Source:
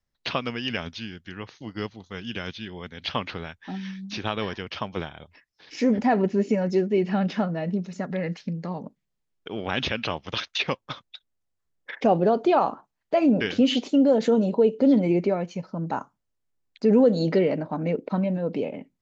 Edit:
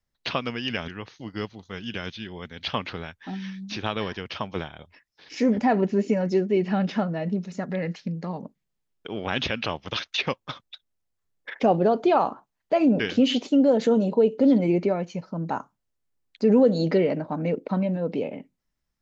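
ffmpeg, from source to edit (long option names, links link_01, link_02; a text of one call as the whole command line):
ffmpeg -i in.wav -filter_complex "[0:a]asplit=2[link_01][link_02];[link_01]atrim=end=0.882[link_03];[link_02]atrim=start=1.288[link_04];[link_03][link_04]acrossfade=duration=0.004:curve1=hsin:curve2=hsin" out.wav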